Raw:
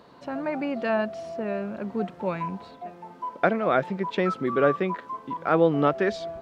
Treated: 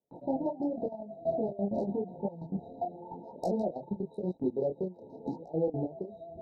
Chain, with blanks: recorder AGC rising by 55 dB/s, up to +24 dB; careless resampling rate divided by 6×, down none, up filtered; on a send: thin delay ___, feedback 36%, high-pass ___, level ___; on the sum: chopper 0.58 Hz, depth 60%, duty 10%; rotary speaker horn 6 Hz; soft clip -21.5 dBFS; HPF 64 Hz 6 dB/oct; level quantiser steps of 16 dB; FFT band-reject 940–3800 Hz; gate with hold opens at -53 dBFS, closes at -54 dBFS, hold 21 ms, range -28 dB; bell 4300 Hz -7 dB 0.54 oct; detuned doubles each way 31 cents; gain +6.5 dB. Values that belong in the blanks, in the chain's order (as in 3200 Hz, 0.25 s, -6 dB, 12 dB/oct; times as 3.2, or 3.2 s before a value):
0.16 s, 3000 Hz, -7 dB